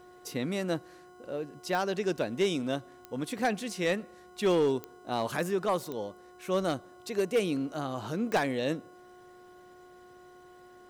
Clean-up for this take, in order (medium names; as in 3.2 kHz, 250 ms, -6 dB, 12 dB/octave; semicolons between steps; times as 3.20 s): clip repair -20 dBFS; de-click; de-hum 361.6 Hz, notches 4